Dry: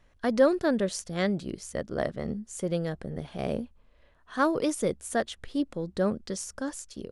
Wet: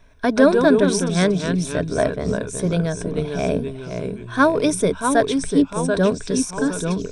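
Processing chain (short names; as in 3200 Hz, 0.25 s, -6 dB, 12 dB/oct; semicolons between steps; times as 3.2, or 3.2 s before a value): echoes that change speed 0.104 s, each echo -2 st, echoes 3, each echo -6 dB; ripple EQ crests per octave 1.6, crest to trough 10 dB; gain +8 dB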